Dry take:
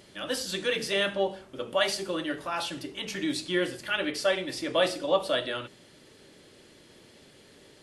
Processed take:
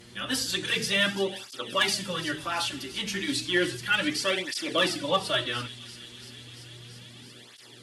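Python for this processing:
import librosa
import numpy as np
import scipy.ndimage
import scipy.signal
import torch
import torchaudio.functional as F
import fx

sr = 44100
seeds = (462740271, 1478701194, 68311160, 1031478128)

p1 = fx.peak_eq(x, sr, hz=560.0, db=-9.5, octaves=1.1)
p2 = p1 + fx.echo_wet_highpass(p1, sr, ms=340, feedback_pct=81, hz=3500.0, wet_db=-13.0, dry=0)
p3 = fx.dmg_buzz(p2, sr, base_hz=120.0, harmonics=37, level_db=-56.0, tilt_db=-9, odd_only=False)
p4 = fx.clip_asym(p3, sr, top_db=-20.0, bottom_db=-19.0)
p5 = fx.flanger_cancel(p4, sr, hz=0.33, depth_ms=7.5)
y = p5 * librosa.db_to_amplitude(7.5)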